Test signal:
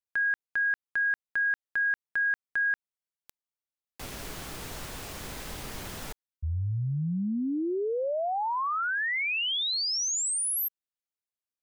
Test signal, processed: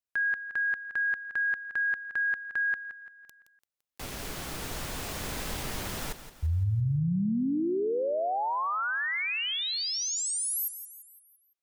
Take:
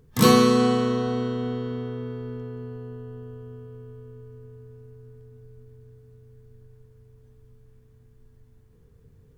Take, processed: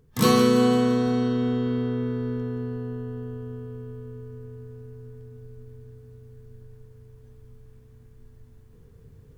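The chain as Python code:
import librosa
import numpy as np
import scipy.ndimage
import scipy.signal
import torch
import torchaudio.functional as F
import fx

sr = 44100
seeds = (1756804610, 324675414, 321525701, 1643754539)

p1 = x + fx.echo_feedback(x, sr, ms=170, feedback_pct=46, wet_db=-12.0, dry=0)
y = fx.rider(p1, sr, range_db=4, speed_s=2.0)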